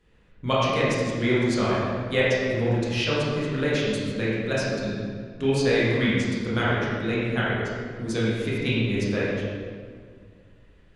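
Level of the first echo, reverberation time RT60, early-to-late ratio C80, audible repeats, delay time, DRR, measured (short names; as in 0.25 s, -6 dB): none, 1.9 s, -0.5 dB, none, none, -8.0 dB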